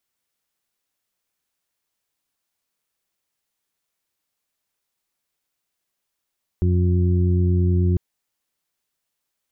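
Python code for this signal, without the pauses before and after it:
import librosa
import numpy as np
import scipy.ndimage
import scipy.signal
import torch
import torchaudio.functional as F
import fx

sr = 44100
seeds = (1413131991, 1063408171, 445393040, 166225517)

y = fx.additive_steady(sr, length_s=1.35, hz=89.3, level_db=-16, upper_db=(-7.0, -17.5, -11.0))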